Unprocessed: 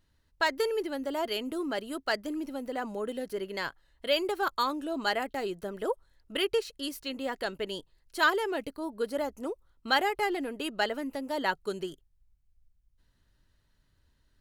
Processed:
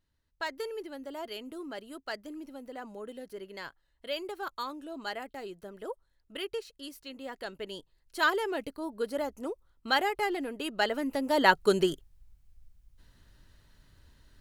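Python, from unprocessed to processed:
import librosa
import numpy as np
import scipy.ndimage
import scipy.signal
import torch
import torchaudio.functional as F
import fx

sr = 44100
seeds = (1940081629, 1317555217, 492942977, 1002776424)

y = fx.gain(x, sr, db=fx.line((7.14, -8.0), (8.36, -1.0), (10.65, -1.0), (11.71, 10.0)))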